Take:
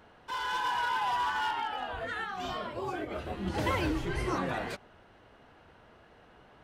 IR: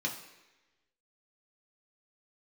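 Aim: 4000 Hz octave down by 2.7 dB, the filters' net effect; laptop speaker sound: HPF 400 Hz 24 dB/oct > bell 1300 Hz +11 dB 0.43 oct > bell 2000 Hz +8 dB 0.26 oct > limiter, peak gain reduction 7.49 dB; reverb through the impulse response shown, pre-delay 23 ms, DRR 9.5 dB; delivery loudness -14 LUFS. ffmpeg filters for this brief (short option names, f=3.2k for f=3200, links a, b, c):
-filter_complex "[0:a]equalizer=f=4k:t=o:g=-5,asplit=2[a][b];[1:a]atrim=start_sample=2205,adelay=23[c];[b][c]afir=irnorm=-1:irlink=0,volume=-13.5dB[d];[a][d]amix=inputs=2:normalize=0,highpass=f=400:w=0.5412,highpass=f=400:w=1.3066,equalizer=f=1.3k:t=o:w=0.43:g=11,equalizer=f=2k:t=o:w=0.26:g=8,volume=18dB,alimiter=limit=-5dB:level=0:latency=1"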